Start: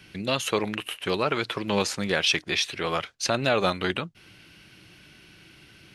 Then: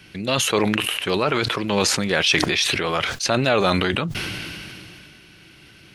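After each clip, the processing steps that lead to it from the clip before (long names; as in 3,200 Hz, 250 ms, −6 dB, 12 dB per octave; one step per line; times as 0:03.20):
level that may fall only so fast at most 21 dB per second
level +3.5 dB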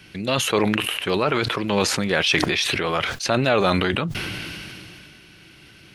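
dynamic equaliser 6,600 Hz, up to −4 dB, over −36 dBFS, Q 0.71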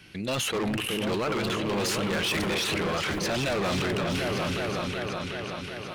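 echo whose low-pass opens from repeat to repeat 373 ms, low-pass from 400 Hz, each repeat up 2 octaves, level −3 dB
gain into a clipping stage and back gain 20.5 dB
level −4 dB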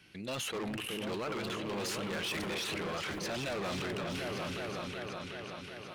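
low-shelf EQ 110 Hz −5 dB
level −8.5 dB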